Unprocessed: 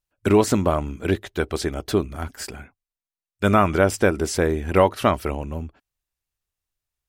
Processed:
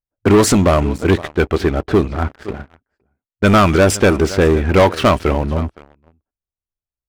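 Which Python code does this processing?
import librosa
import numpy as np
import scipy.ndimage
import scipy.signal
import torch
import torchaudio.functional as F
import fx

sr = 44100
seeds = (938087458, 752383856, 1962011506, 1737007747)

y = fx.env_lowpass(x, sr, base_hz=770.0, full_db=-13.5)
y = y + 10.0 ** (-21.5 / 20.0) * np.pad(y, (int(515 * sr / 1000.0), 0))[:len(y)]
y = fx.leveller(y, sr, passes=3)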